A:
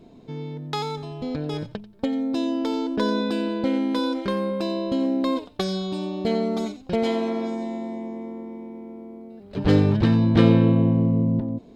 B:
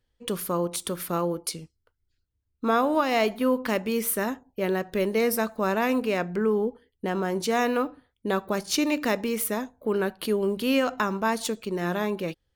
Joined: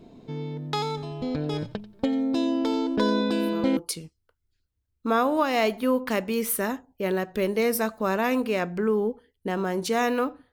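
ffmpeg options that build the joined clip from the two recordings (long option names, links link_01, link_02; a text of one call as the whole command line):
ffmpeg -i cue0.wav -i cue1.wav -filter_complex "[1:a]asplit=2[link_01][link_02];[0:a]apad=whole_dur=10.52,atrim=end=10.52,atrim=end=3.772[link_03];[link_02]atrim=start=1.348:end=8.1[link_04];[link_01]atrim=start=0.93:end=1.35,asetpts=PTS-STARTPTS,volume=-15.5dB,afade=type=in:duration=0.004:curve=hsin,afade=type=out:start_time=0.416:duration=0.004:curve=hsin,adelay=3350[link_05];[link_03][link_04]acrossfade=duration=0.004:curve1=hsin:curve2=hsin[link_06];[link_06][link_05]amix=inputs=2:normalize=0" out.wav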